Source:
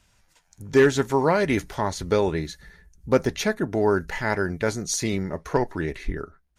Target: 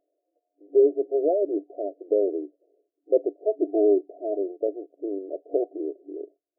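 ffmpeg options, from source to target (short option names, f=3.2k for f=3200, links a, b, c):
-filter_complex "[0:a]asettb=1/sr,asplit=3[a][b][c];[a]atrim=end=3.454[d];[b]atrim=start=3.45:end=4.38,asetpts=PTS-STARTPTS,afade=t=in:d=0.004:c=qsin,afade=t=out:st=0.926:d=0.004:c=qsin,aecho=1:1:2.9:0.6,atrim=end_sample=41013[e];[c]atrim=start=4.376[f];[d][e]acrossfade=d=0.004:c1=hsin:c2=qsin[g];[g][f]acrossfade=d=0.004:c1=qsin:c2=hsin,afftfilt=real='re*between(b*sr/4096,280,730)':imag='im*between(b*sr/4096,280,730)':win_size=4096:overlap=0.75"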